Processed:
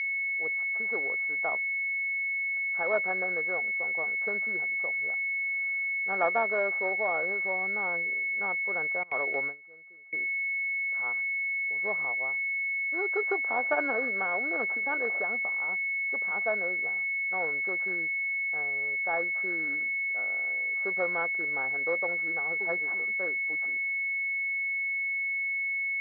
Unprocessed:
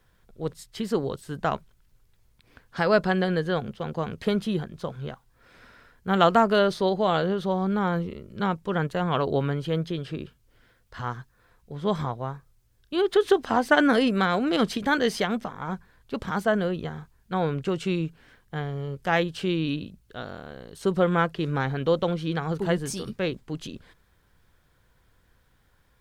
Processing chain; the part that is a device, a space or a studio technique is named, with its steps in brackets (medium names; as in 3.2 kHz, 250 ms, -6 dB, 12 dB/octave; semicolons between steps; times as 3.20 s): toy sound module (decimation joined by straight lines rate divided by 8×; class-D stage that switches slowly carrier 2.2 kHz; cabinet simulation 770–4500 Hz, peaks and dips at 990 Hz -5 dB, 1.7 kHz +3 dB, 2.6 kHz -3 dB, 3.8 kHz -8 dB); 9.03–10.13 s: gate with hold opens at -22 dBFS